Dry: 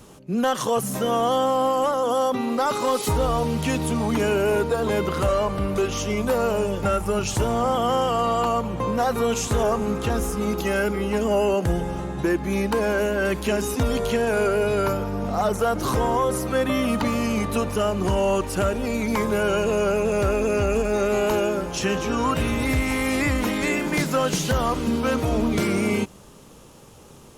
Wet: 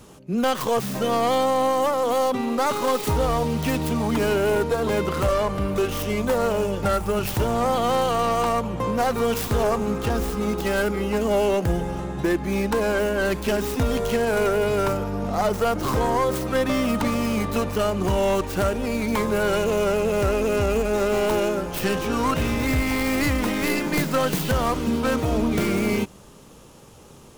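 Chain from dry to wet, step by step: tracing distortion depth 0.31 ms

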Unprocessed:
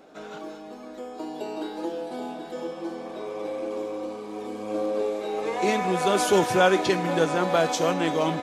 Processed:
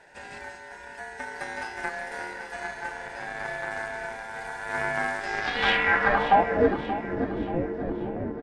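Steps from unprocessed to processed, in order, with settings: Chebyshev shaper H 8 -16 dB, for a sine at -6.5 dBFS; ring modulator 1.2 kHz; low-pass sweep 9.1 kHz -> 340 Hz, 5.18–6.76 s; on a send: feedback delay 581 ms, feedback 45%, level -12 dB

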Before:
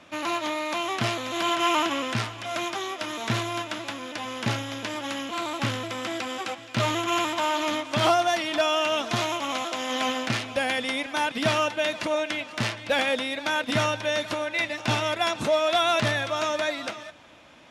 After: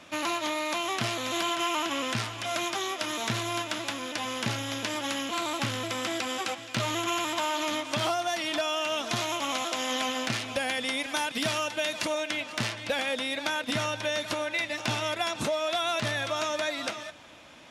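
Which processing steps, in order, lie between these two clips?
treble shelf 4.2 kHz +7 dB, from 11.00 s +12 dB, from 12.26 s +6 dB; compression, threshold -26 dBFS, peak gain reduction 8.5 dB

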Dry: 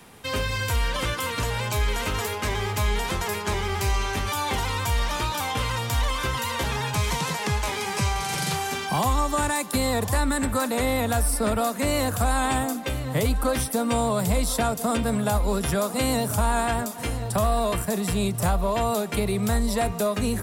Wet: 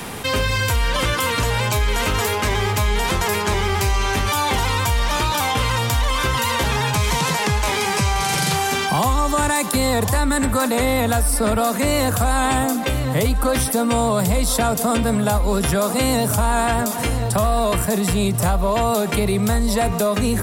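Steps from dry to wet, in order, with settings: level flattener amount 50%; trim +3.5 dB

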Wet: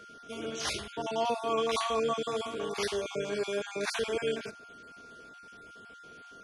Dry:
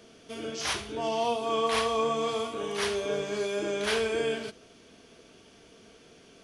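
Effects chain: random holes in the spectrogram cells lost 28%; whistle 1.4 kHz -48 dBFS; trim -1 dB

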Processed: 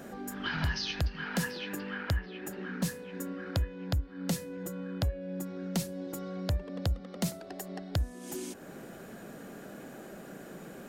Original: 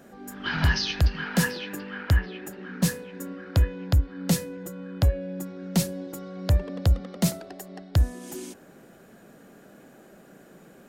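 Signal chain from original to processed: compression 2:1, threshold -46 dBFS, peak gain reduction 16 dB; trim +5.5 dB

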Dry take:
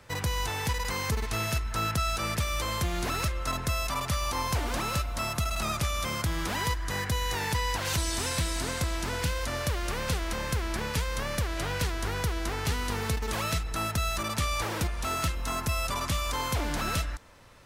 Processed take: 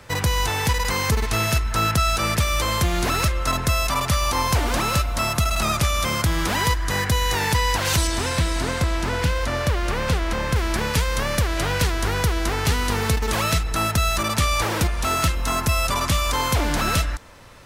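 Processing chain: 8.07–10.56 s: treble shelf 4.6 kHz -9 dB; trim +8.5 dB

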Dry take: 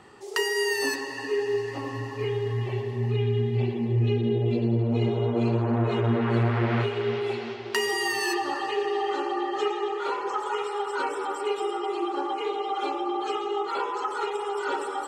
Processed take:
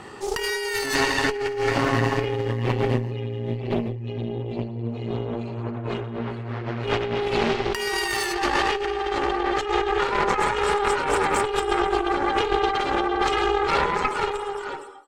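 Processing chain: fade out at the end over 2.09 s; compressor with a negative ratio -32 dBFS, ratio -1; Chebyshev shaper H 4 -9 dB, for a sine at -16 dBFS; trim +6 dB

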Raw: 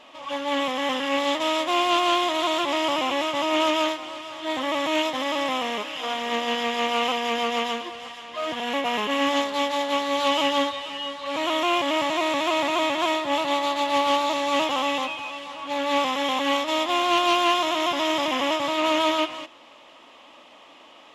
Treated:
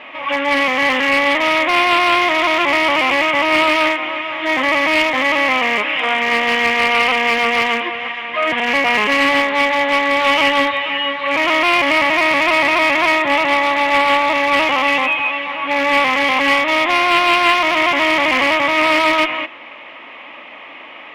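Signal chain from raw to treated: high-pass 58 Hz; in parallel at -0.5 dB: peak limiter -23 dBFS, peak gain reduction 10.5 dB; on the sum: resonant low-pass 2.2 kHz, resonance Q 4.1; one-sided clip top -13.5 dBFS; trim +4 dB

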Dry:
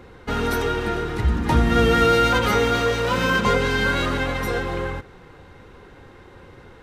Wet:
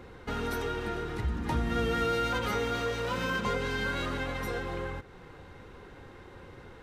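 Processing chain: compression 1.5:1, threshold -38 dBFS, peak gain reduction 9 dB; trim -3.5 dB

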